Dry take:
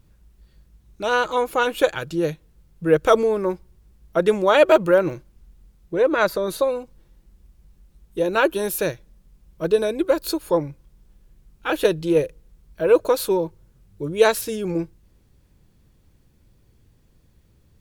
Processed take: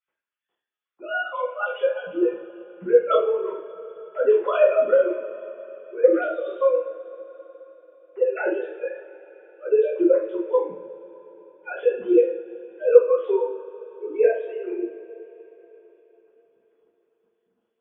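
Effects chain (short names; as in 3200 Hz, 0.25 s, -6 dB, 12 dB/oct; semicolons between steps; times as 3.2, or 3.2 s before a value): sine-wave speech; two-slope reverb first 0.46 s, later 4.3 s, from -22 dB, DRR -9.5 dB; gain -11.5 dB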